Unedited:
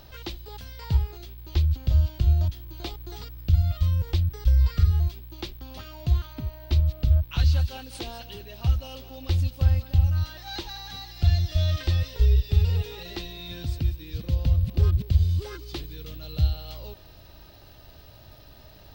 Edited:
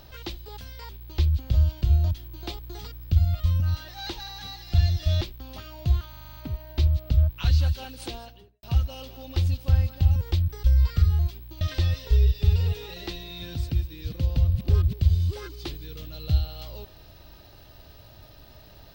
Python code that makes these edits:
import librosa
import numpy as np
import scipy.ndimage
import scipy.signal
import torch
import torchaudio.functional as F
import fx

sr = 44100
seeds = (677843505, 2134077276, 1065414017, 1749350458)

y = fx.studio_fade_out(x, sr, start_s=7.98, length_s=0.58)
y = fx.edit(y, sr, fx.cut(start_s=0.89, length_s=0.37),
    fx.swap(start_s=3.97, length_s=1.45, other_s=10.09, other_length_s=1.61),
    fx.stutter(start_s=6.3, slice_s=0.04, count=8), tone=tone)